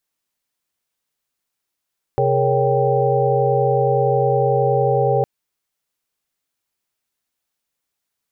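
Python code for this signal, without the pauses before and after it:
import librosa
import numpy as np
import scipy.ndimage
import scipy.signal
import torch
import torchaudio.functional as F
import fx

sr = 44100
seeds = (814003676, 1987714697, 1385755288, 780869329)

y = fx.chord(sr, length_s=3.06, notes=(48, 68, 70, 73, 79), wave='sine', level_db=-20.5)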